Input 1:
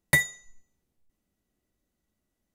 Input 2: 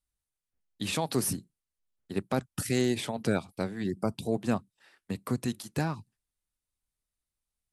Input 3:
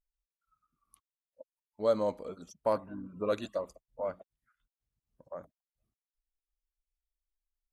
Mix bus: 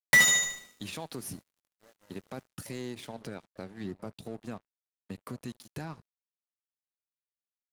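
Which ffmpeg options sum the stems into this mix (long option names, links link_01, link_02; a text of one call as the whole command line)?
ffmpeg -i stem1.wav -i stem2.wav -i stem3.wav -filter_complex "[0:a]dynaudnorm=framelen=100:gausssize=3:maxgain=6dB,asplit=2[link_01][link_02];[link_02]highpass=frequency=720:poles=1,volume=34dB,asoftclip=type=tanh:threshold=-4.5dB[link_03];[link_01][link_03]amix=inputs=2:normalize=0,lowpass=frequency=5200:poles=1,volume=-6dB,volume=-7dB,asplit=2[link_04][link_05];[link_05]volume=-8.5dB[link_06];[1:a]bandreject=frequency=7900:width=9.4,alimiter=level_in=1dB:limit=-24dB:level=0:latency=1:release=301,volume=-1dB,volume=-2.5dB,asplit=2[link_07][link_08];[link_08]volume=-22.5dB[link_09];[2:a]lowshelf=frequency=380:gain=8,acrossover=split=300|940[link_10][link_11][link_12];[link_10]acompressor=threshold=-53dB:ratio=4[link_13];[link_11]acompressor=threshold=-36dB:ratio=4[link_14];[link_12]acompressor=threshold=-49dB:ratio=4[link_15];[link_13][link_14][link_15]amix=inputs=3:normalize=0,volume=-18.5dB[link_16];[link_06][link_09]amix=inputs=2:normalize=0,aecho=0:1:74|148|222|296|370|444|518|592:1|0.56|0.314|0.176|0.0983|0.0551|0.0308|0.0173[link_17];[link_04][link_07][link_16][link_17]amix=inputs=4:normalize=0,aeval=exprs='sgn(val(0))*max(abs(val(0))-0.00282,0)':channel_layout=same" out.wav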